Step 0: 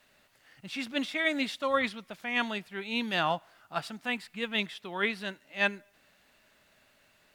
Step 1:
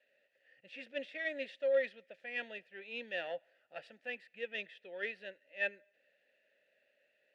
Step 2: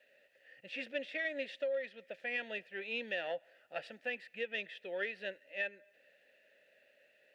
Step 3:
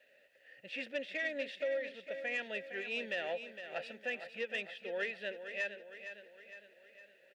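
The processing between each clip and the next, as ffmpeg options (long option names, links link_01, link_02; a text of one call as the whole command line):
ffmpeg -i in.wav -filter_complex "[0:a]aeval=exprs='0.266*(cos(1*acos(clip(val(0)/0.266,-1,1)))-cos(1*PI/2))+0.015*(cos(6*acos(clip(val(0)/0.266,-1,1)))-cos(6*PI/2))':channel_layout=same,asplit=3[link_01][link_02][link_03];[link_01]bandpass=frequency=530:width_type=q:width=8,volume=0dB[link_04];[link_02]bandpass=frequency=1840:width_type=q:width=8,volume=-6dB[link_05];[link_03]bandpass=frequency=2480:width_type=q:width=8,volume=-9dB[link_06];[link_04][link_05][link_06]amix=inputs=3:normalize=0,bandreject=frequency=1100:width=14,volume=1.5dB" out.wav
ffmpeg -i in.wav -af "acompressor=threshold=-41dB:ratio=8,volume=7dB" out.wav
ffmpeg -i in.wav -af "asoftclip=type=tanh:threshold=-27dB,aecho=1:1:460|920|1380|1840|2300|2760:0.316|0.161|0.0823|0.0419|0.0214|0.0109,volume=1dB" out.wav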